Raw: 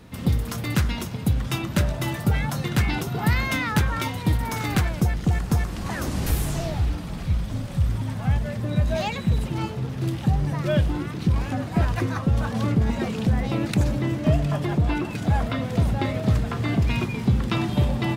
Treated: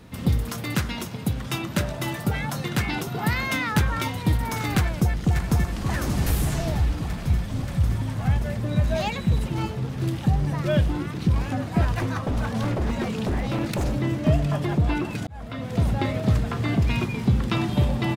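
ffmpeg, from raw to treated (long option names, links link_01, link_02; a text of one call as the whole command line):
ffmpeg -i in.wav -filter_complex "[0:a]asettb=1/sr,asplit=3[link_01][link_02][link_03];[link_01]atrim=end=0.494[link_04];[link_02]atrim=start=0.49:end=3.76,asetpts=PTS-STARTPTS,afade=type=in:duration=0.004:curve=qsin,afade=type=out:start_time=3.266:duration=0.004:curve=qsin,highpass=frequency=140:poles=1[link_05];[link_03]atrim=start=3.756[link_06];[link_04][link_05]acrossfade=duration=0.004:curve1=hsin:curve2=qsin[link_07];[link_07][link_06]acrossfade=duration=0.004:curve1=qsin:curve2=hsin,asplit=2[link_08][link_09];[link_09]afade=type=in:start_time=4.77:duration=0.01,afade=type=out:start_time=5.9:duration=0.01,aecho=0:1:580|1160|1740|2320|2900|3480|4060|4640|5220|5800|6380|6960:0.421697|0.337357|0.269886|0.215909|0.172727|0.138182|0.110545|0.0884362|0.0707489|0.0565991|0.0452793|0.0362235[link_10];[link_08][link_10]amix=inputs=2:normalize=0,asettb=1/sr,asplit=3[link_11][link_12][link_13];[link_11]atrim=end=11.984[link_14];[link_12]atrim=start=11.98:end=13.96,asetpts=PTS-STARTPTS,afade=type=in:duration=0.004:curve=qsin,afade=type=out:start_time=1.976:duration=0.004:curve=qsin,aeval=exprs='0.112*(abs(mod(val(0)/0.112+3,4)-2)-1)':channel_layout=same[link_15];[link_13]atrim=start=13.956[link_16];[link_14][link_15]acrossfade=duration=0.004:curve1=hsin:curve2=qsin[link_17];[link_17][link_16]acrossfade=duration=0.004:curve1=qsin:curve2=hsin,asplit=2[link_18][link_19];[link_18]atrim=end=15.27,asetpts=PTS-STARTPTS,afade=type=out:start_time=15.266:duration=0.004:curve=hsin[link_20];[link_19]atrim=start=15.27,asetpts=PTS-STARTPTS,afade=type=in:duration=0.6[link_21];[link_20][link_21]concat=n=2:v=0:a=1" out.wav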